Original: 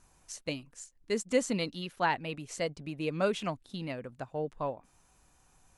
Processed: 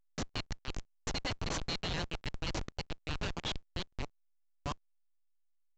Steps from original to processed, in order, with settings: time reversed locally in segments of 176 ms; treble shelf 4.2 kHz -2 dB; band-pass sweep 3.9 kHz -> 790 Hz, 4.21–4.87 s; tilt shelf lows -9.5 dB, about 1.3 kHz; on a send: two-band feedback delay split 2.5 kHz, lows 408 ms, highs 137 ms, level -15.5 dB; on the sum: Schmitt trigger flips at -39 dBFS; trim +11 dB; A-law 128 kbps 16 kHz

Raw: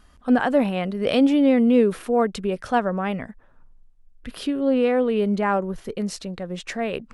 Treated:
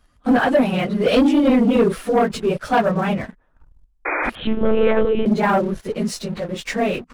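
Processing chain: phase randomisation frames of 50 ms; waveshaping leveller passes 2; 4.05–4.30 s: painted sound noise 290–2500 Hz -20 dBFS; 4.35–5.26 s: monotone LPC vocoder at 8 kHz 220 Hz; trim -2 dB

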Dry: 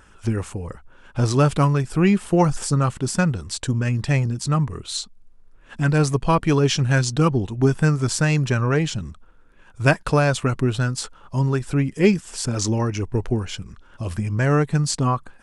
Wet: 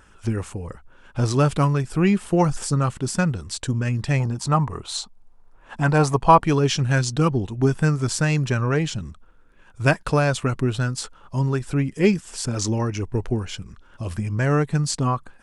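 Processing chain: 4.20–6.44 s: peaking EQ 860 Hz +11.5 dB 1.1 oct; trim -1.5 dB

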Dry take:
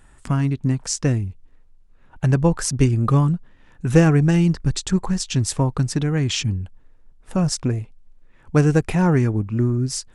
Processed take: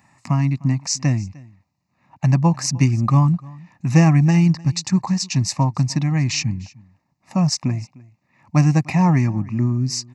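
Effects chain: high-pass 120 Hz 24 dB/octave; static phaser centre 2.2 kHz, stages 8; delay 303 ms -23 dB; trim +4.5 dB

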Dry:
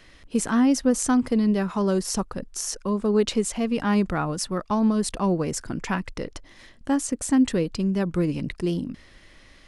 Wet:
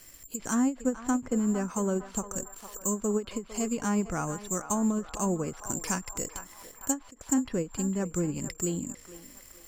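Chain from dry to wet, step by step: band-stop 1.9 kHz, Q 20; careless resampling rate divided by 6×, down filtered, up zero stuff; low-pass that closes with the level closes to 2.2 kHz, closed at -10 dBFS; band-passed feedback delay 454 ms, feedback 57%, band-pass 1.1 kHz, level -10 dB; endings held to a fixed fall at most 270 dB/s; trim -6 dB

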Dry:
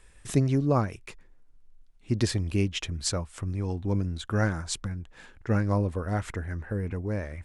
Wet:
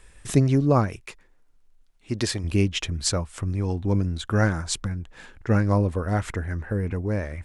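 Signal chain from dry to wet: 1.00–2.44 s: bass shelf 290 Hz -9 dB; trim +4.5 dB

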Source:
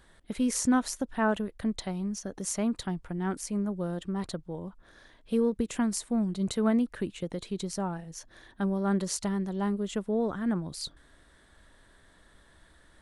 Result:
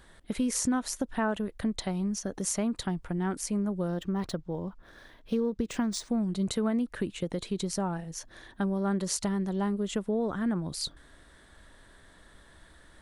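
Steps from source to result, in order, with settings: compression 3:1, threshold -30 dBFS, peak gain reduction 8 dB; 3.88–6.09 s: decimation joined by straight lines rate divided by 3×; trim +3.5 dB

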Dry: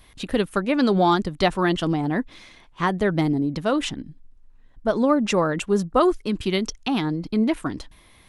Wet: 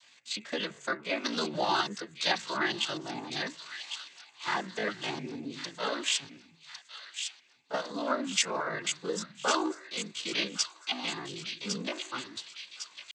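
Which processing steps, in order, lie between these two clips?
tilt EQ +4.5 dB/octave; de-hum 165.6 Hz, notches 16; noise-vocoded speech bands 16; tempo 0.63×; feedback echo behind a high-pass 1105 ms, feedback 53%, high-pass 2.4 kHz, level -6 dB; trim -8 dB

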